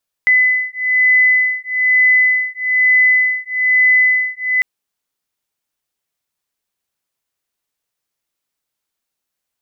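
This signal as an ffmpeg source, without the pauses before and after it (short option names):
-f lavfi -i "aevalsrc='0.211*(sin(2*PI*2010*t)+sin(2*PI*2011.1*t))':d=4.35:s=44100"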